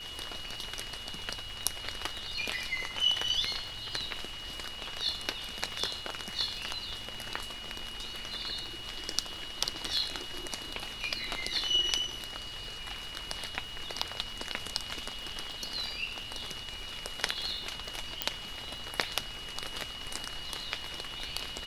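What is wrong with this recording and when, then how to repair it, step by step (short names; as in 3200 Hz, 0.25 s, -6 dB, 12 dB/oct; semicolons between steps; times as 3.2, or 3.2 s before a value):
crackle 49/s -43 dBFS
tone 2900 Hz -42 dBFS
18.22 pop -10 dBFS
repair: de-click; notch 2900 Hz, Q 30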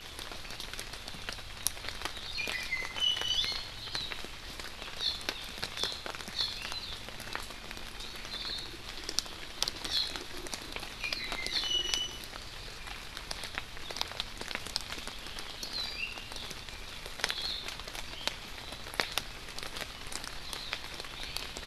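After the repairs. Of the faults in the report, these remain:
none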